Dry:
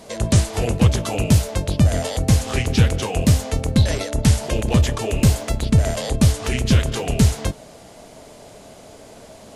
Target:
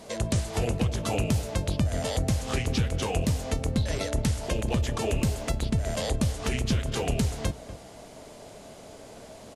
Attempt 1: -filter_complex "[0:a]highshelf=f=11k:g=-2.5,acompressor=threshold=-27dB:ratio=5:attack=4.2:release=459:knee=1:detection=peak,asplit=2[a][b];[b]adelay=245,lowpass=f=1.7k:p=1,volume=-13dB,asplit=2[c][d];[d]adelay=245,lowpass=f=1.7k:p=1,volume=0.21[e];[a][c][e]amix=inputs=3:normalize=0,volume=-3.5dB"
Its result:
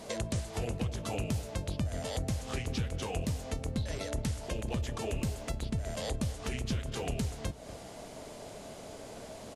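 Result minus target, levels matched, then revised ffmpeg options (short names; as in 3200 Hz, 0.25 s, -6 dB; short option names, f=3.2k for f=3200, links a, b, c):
compressor: peak gain reduction +7.5 dB
-filter_complex "[0:a]highshelf=f=11k:g=-2.5,acompressor=threshold=-17.5dB:ratio=5:attack=4.2:release=459:knee=1:detection=peak,asplit=2[a][b];[b]adelay=245,lowpass=f=1.7k:p=1,volume=-13dB,asplit=2[c][d];[d]adelay=245,lowpass=f=1.7k:p=1,volume=0.21[e];[a][c][e]amix=inputs=3:normalize=0,volume=-3.5dB"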